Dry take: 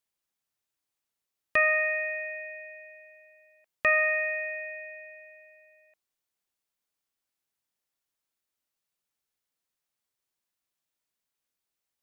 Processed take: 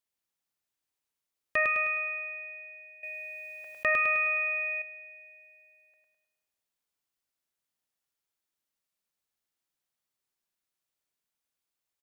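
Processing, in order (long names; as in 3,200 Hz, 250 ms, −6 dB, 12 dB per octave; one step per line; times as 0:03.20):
on a send: repeating echo 104 ms, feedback 50%, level −3.5 dB
0:03.03–0:04.82: on the sum: envelope flattener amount 50%
level −3.5 dB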